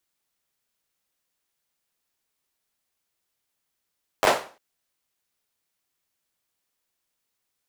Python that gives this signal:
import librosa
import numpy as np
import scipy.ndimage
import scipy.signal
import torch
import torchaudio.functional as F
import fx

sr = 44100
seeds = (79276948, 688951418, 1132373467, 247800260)

y = fx.drum_clap(sr, seeds[0], length_s=0.35, bursts=5, spacing_ms=10, hz=670.0, decay_s=0.37)